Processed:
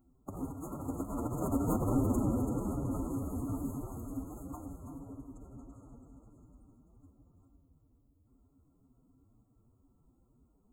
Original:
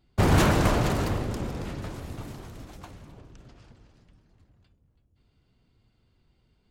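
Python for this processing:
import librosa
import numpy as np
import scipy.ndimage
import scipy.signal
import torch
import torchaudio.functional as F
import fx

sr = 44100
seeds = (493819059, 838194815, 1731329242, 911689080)

p1 = fx.rattle_buzz(x, sr, strikes_db=-24.0, level_db=-23.0)
p2 = fx.high_shelf(p1, sr, hz=12000.0, db=10.0)
p3 = p2 + fx.echo_single(p2, sr, ms=210, db=-9.0, dry=0)
p4 = fx.stretch_vocoder(p3, sr, factor=1.6)
p5 = np.clip(p4, -10.0 ** (-20.0 / 20.0), 10.0 ** (-20.0 / 20.0))
p6 = p4 + (p5 * librosa.db_to_amplitude(-8.0))
p7 = fx.brickwall_bandstop(p6, sr, low_hz=1400.0, high_hz=6400.0)
p8 = fx.over_compress(p7, sr, threshold_db=-25.0, ratio=-0.5)
p9 = fx.peak_eq(p8, sr, hz=270.0, db=13.5, octaves=0.3)
p10 = fx.end_taper(p9, sr, db_per_s=570.0)
y = p10 * librosa.db_to_amplitude(-9.0)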